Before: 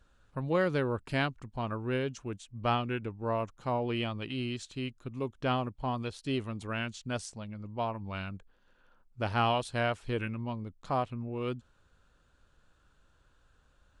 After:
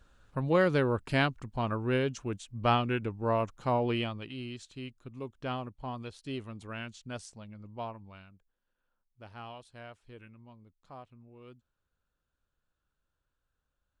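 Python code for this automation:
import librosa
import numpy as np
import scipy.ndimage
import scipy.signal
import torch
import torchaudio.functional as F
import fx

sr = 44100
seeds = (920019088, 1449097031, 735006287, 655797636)

y = fx.gain(x, sr, db=fx.line((3.89, 3.0), (4.31, -5.5), (7.87, -5.5), (8.31, -17.5)))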